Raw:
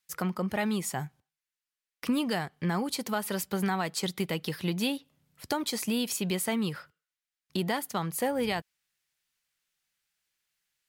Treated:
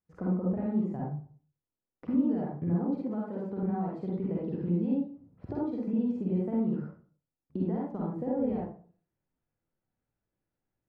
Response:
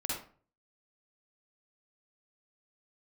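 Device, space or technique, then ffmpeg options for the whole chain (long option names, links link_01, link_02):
television next door: -filter_complex "[0:a]acompressor=threshold=-39dB:ratio=4,lowpass=470[link_01];[1:a]atrim=start_sample=2205[link_02];[link_01][link_02]afir=irnorm=-1:irlink=0,asettb=1/sr,asplit=3[link_03][link_04][link_05];[link_03]atrim=end=3.024[link_06];[link_04]atrim=start=3.02:end=3.63,asetpts=PTS-STARTPTS,afade=type=in:duration=0.004:curve=qsin,afade=type=out:start_time=0.606:duration=0.004:curve=qsin,highpass=frequency=220:poles=1[link_07];[link_05]atrim=start=3.626[link_08];[link_06][link_07]acrossfade=duration=0.004:curve1=hsin:curve2=qsin[link_09];[link_09][link_08]acrossfade=duration=0.004:curve1=qsin:curve2=hsin,volume=8.5dB"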